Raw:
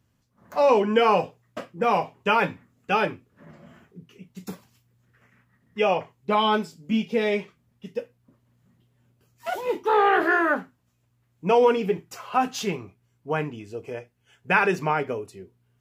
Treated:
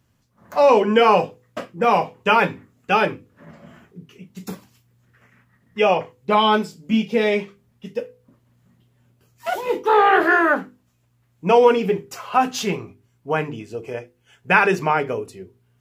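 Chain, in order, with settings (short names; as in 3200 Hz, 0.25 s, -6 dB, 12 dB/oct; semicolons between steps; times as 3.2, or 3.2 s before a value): notches 50/100/150/200/250/300/350/400/450/500 Hz; gain +5 dB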